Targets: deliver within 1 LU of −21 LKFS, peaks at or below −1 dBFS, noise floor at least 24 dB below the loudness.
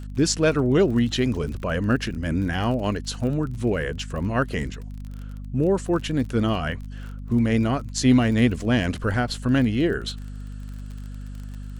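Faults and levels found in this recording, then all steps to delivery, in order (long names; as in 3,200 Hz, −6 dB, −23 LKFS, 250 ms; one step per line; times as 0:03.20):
crackle rate 32 per second; mains hum 50 Hz; hum harmonics up to 250 Hz; level of the hum −32 dBFS; integrated loudness −23.5 LKFS; sample peak −7.0 dBFS; target loudness −21.0 LKFS
→ click removal
mains-hum notches 50/100/150/200/250 Hz
level +2.5 dB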